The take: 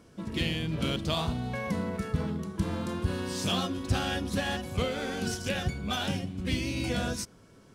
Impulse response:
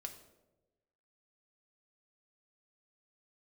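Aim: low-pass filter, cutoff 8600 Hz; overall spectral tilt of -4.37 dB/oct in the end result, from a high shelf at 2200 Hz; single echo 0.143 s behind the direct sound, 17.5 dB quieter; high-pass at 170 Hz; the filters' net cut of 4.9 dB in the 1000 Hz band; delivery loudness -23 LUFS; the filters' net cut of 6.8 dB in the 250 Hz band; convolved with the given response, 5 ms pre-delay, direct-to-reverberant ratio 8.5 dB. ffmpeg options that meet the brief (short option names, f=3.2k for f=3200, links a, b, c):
-filter_complex "[0:a]highpass=170,lowpass=8.6k,equalizer=f=250:t=o:g=-7,equalizer=f=1k:t=o:g=-5.5,highshelf=f=2.2k:g=-4.5,aecho=1:1:143:0.133,asplit=2[a][b];[1:a]atrim=start_sample=2205,adelay=5[c];[b][c]afir=irnorm=-1:irlink=0,volume=-5dB[d];[a][d]amix=inputs=2:normalize=0,volume=13dB"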